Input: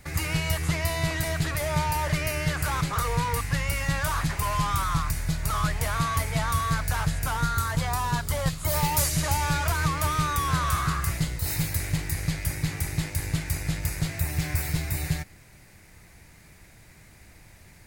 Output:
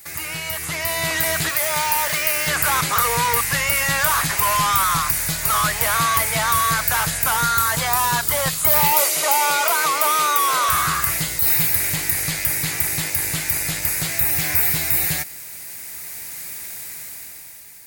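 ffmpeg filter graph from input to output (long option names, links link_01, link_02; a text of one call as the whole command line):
ffmpeg -i in.wav -filter_complex "[0:a]asettb=1/sr,asplit=3[link_01][link_02][link_03];[link_01]atrim=end=1.494[link_04];[link_02]atrim=start=1.49:end=2.48,asetpts=PTS-STARTPTS,afade=type=in:duration=0.004:curve=qsin,afade=type=out:start_time=0.986:duration=0.004:curve=qsin,lowshelf=frequency=350:gain=-9,aeval=exprs='sgn(val(0))*max(abs(val(0))-0.00708,0)':channel_layout=same[link_05];[link_03]atrim=start=2.476[link_06];[link_04][link_05]acrossfade=duration=0.004:curve1=hsin:curve2=qsin[link_07];[link_07][link_06]acrossfade=duration=0.004:curve1=qsin:curve2=hsin,asettb=1/sr,asplit=3[link_08][link_09][link_10];[link_08]atrim=end=8.924[link_11];[link_09]atrim=start=8.92:end=10.69,asetpts=PTS-STARTPTS,afade=type=in:duration=0.004:curve=qsin,afade=type=out:start_time=1.766:duration=0.004:curve=qsin,highpass=frequency=440:width_type=q:width=1.6,bandreject=frequency=1700:width=5.6[link_12];[link_10]atrim=start=10.686[link_13];[link_11][link_12]acrossfade=duration=0.004:curve1=hsin:curve2=qsin[link_14];[link_14][link_13]acrossfade=duration=0.004:curve1=qsin:curve2=hsin,acrossover=split=3100[link_15][link_16];[link_16]acompressor=threshold=-43dB:ratio=4:attack=1:release=60[link_17];[link_15][link_17]amix=inputs=2:normalize=0,aemphasis=mode=production:type=riaa,dynaudnorm=framelen=170:gausssize=11:maxgain=11.5dB" out.wav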